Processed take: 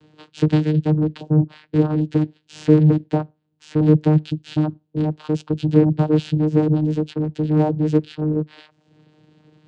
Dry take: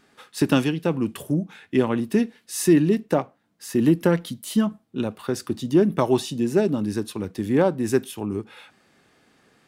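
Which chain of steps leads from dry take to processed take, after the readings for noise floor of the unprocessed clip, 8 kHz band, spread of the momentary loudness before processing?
-65 dBFS, under -15 dB, 10 LU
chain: reverb removal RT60 0.69 s; high-order bell 3.5 kHz +12 dB 1.1 oct; in parallel at -10 dB: sine folder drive 10 dB, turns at -13 dBFS; on the sum: vocoder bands 8, saw 153 Hz; tilt shelf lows +5.5 dB; trim -1.5 dB

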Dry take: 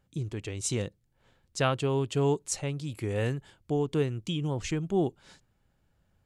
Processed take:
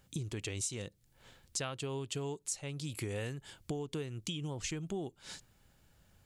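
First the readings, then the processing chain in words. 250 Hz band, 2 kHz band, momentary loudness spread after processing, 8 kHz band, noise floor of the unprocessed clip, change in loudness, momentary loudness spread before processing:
-10.0 dB, -7.0 dB, 8 LU, -2.5 dB, -72 dBFS, -9.0 dB, 8 LU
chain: treble shelf 2.6 kHz +10 dB; compression 10:1, threshold -39 dBFS, peak gain reduction 20.5 dB; trim +3.5 dB

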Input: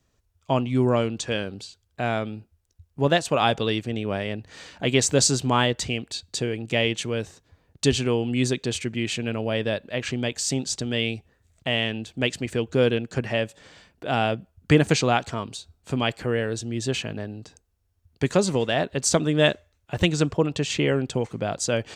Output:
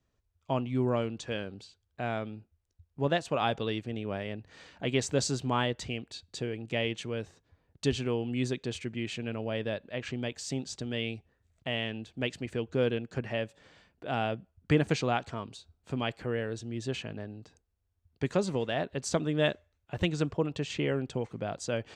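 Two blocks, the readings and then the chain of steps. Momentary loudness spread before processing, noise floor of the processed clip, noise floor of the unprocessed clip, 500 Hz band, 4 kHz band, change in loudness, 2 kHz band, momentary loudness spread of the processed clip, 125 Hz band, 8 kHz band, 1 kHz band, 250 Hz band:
12 LU, -77 dBFS, -69 dBFS, -7.5 dB, -10.0 dB, -8.0 dB, -8.5 dB, 12 LU, -7.5 dB, -14.0 dB, -7.5 dB, -7.5 dB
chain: treble shelf 6 kHz -11 dB; trim -7.5 dB

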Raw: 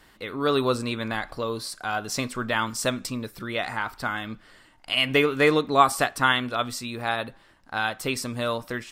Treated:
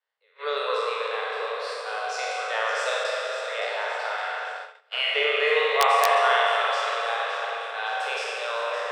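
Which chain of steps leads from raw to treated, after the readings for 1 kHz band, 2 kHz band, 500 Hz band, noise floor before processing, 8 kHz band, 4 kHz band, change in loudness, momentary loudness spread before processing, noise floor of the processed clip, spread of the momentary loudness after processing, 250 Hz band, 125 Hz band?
+2.0 dB, +1.5 dB, +0.5 dB, -56 dBFS, -5.0 dB, +0.5 dB, +0.5 dB, 11 LU, -61 dBFS, 11 LU, under -30 dB, under -40 dB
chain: spectral sustain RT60 1.88 s; distance through air 110 m; echo whose repeats swap between lows and highs 283 ms, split 1.2 kHz, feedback 75%, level -7.5 dB; integer overflow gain 3 dB; treble shelf 2.4 kHz +3 dB; spring tank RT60 3 s, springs 43 ms, chirp 50 ms, DRR 0.5 dB; gate -25 dBFS, range -26 dB; Chebyshev high-pass 420 Hz, order 10; trim -6.5 dB

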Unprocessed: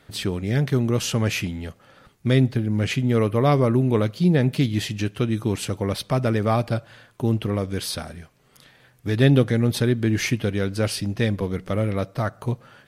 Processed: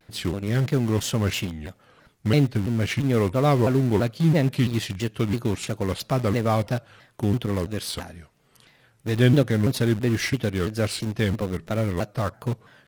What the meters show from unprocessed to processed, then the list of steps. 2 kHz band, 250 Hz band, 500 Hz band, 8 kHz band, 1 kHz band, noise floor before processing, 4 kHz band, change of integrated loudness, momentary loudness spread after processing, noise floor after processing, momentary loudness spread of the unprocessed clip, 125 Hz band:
-1.0 dB, -1.5 dB, -1.5 dB, -1.5 dB, -1.0 dB, -57 dBFS, -1.5 dB, -1.5 dB, 10 LU, -61 dBFS, 9 LU, -1.5 dB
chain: in parallel at -11 dB: bit crusher 4-bit; on the sum: vibrato with a chosen wave saw down 3 Hz, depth 250 cents; trim -3.5 dB

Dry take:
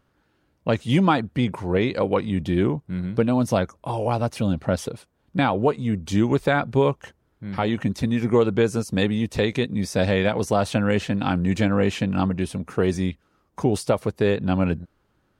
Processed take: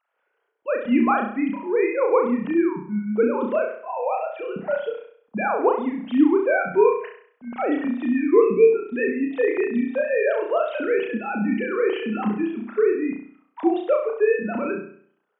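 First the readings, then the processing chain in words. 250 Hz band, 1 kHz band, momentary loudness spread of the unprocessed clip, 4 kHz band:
-0.5 dB, +0.5 dB, 7 LU, under -10 dB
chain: formants replaced by sine waves; spectral selection erased 8.42–8.71 s, 930–1900 Hz; flutter echo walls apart 5.7 m, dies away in 0.55 s; trim -1.5 dB

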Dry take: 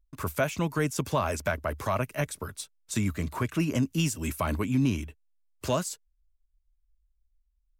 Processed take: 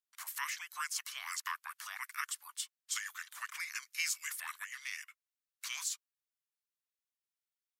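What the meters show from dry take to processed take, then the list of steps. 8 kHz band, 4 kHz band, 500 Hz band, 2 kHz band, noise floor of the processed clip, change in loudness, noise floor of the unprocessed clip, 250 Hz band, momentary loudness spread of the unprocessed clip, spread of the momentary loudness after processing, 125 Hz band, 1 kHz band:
-1.5 dB, -2.5 dB, under -40 dB, -3.5 dB, under -85 dBFS, -10.0 dB, -73 dBFS, under -40 dB, 10 LU, 8 LU, under -40 dB, -11.0 dB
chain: steep high-pass 1.6 kHz 72 dB/octave; frequency shift -480 Hz; trim -1 dB

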